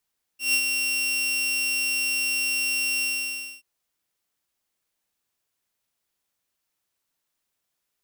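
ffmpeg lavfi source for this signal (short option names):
-f lavfi -i "aevalsrc='0.168*(2*mod(2740*t,1)-1)':d=3.23:s=44100,afade=t=in:d=0.147,afade=t=out:st=0.147:d=0.072:silence=0.562,afade=t=out:st=2.63:d=0.6"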